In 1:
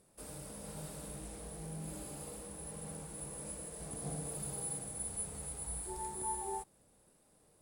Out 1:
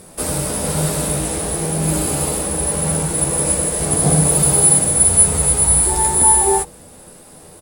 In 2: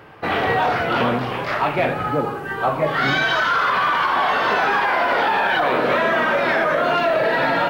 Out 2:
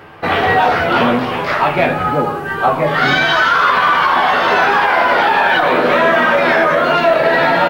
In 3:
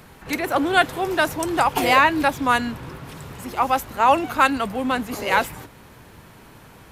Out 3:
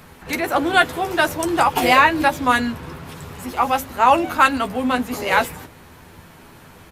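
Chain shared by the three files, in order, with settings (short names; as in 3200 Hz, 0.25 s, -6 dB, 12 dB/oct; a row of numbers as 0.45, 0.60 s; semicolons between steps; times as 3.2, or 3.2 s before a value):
doubler 12 ms -6 dB; de-hum 53.47 Hz, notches 11; normalise peaks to -1.5 dBFS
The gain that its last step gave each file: +26.0, +5.0, +1.5 dB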